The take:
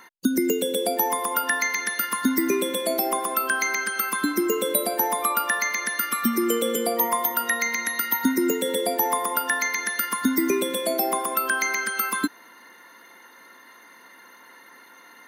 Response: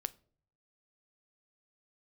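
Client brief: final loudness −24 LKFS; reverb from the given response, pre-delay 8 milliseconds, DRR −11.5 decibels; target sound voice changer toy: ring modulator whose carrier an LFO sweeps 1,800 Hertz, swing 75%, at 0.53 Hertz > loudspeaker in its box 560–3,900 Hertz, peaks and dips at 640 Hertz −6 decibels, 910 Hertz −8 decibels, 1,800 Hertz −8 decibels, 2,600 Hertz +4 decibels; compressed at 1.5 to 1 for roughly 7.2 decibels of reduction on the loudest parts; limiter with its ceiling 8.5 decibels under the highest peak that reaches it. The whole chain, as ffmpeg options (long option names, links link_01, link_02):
-filter_complex "[0:a]acompressor=threshold=-39dB:ratio=1.5,alimiter=limit=-24dB:level=0:latency=1,asplit=2[link_01][link_02];[1:a]atrim=start_sample=2205,adelay=8[link_03];[link_02][link_03]afir=irnorm=-1:irlink=0,volume=12.5dB[link_04];[link_01][link_04]amix=inputs=2:normalize=0,aeval=exprs='val(0)*sin(2*PI*1800*n/s+1800*0.75/0.53*sin(2*PI*0.53*n/s))':channel_layout=same,highpass=560,equalizer=frequency=640:width_type=q:width=4:gain=-6,equalizer=frequency=910:width_type=q:width=4:gain=-8,equalizer=frequency=1800:width_type=q:width=4:gain=-8,equalizer=frequency=2600:width_type=q:width=4:gain=4,lowpass=frequency=3900:width=0.5412,lowpass=frequency=3900:width=1.3066,volume=2.5dB"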